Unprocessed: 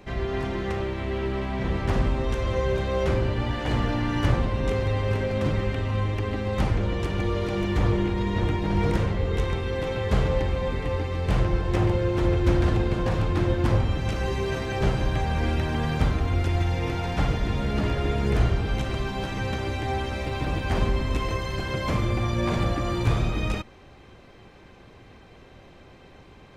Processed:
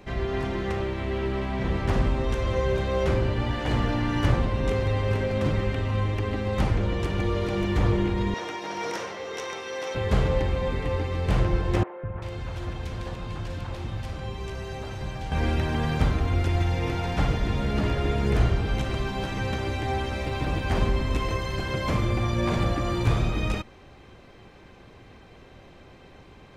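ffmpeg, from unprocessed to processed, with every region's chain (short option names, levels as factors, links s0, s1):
-filter_complex "[0:a]asettb=1/sr,asplit=3[s0][s1][s2];[s0]atrim=end=8.344[s3];[s1]atrim=start=8.34:end=9.95,asetpts=PTS-STARTPTS,afade=t=in:d=0.004:c=qsin,afade=t=out:st=1.606:d=0.004:c=qsin,highpass=530,equalizer=f=5700:t=o:w=0.23:g=13[s4];[s2]atrim=start=9.946[s5];[s3][s4]acrossfade=d=0.004:c1=hsin:c2=qsin[s6];[s6][s5]acrossfade=d=0.004:c1=qsin:c2=hsin,asettb=1/sr,asplit=3[s7][s8][s9];[s7]atrim=end=11.834[s10];[s8]atrim=start=11.83:end=15.32,asetpts=PTS-STARTPTS,afade=t=in:d=0.004:c=qsin,afade=t=out:st=3.486:d=0.004:c=qsin,acrossover=split=110|780|2000[s11][s12][s13][s14];[s11]acompressor=threshold=0.0158:ratio=3[s15];[s12]acompressor=threshold=0.0126:ratio=3[s16];[s13]acompressor=threshold=0.00562:ratio=3[s17];[s14]acompressor=threshold=0.00447:ratio=3[s18];[s15][s16][s17][s18]amix=inputs=4:normalize=0,acrossover=split=350|1800[s19][s20][s21];[s19]adelay=200[s22];[s21]adelay=390[s23];[s22][s20][s23]amix=inputs=3:normalize=0,atrim=end_sample=153909[s24];[s9]atrim=start=15.316[s25];[s10][s24]acrossfade=d=0.004:c1=hsin:c2=qsin[s26];[s26][s25]acrossfade=d=0.004:c1=qsin:c2=hsin"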